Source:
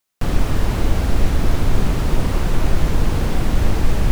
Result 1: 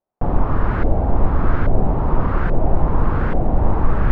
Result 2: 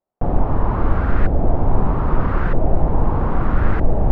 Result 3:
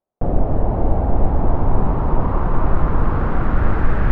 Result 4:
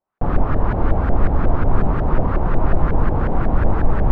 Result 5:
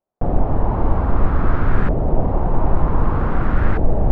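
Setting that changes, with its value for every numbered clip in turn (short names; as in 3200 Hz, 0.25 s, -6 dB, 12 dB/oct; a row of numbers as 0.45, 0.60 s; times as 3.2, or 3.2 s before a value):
LFO low-pass, rate: 1.2, 0.79, 0.23, 5.5, 0.53 Hz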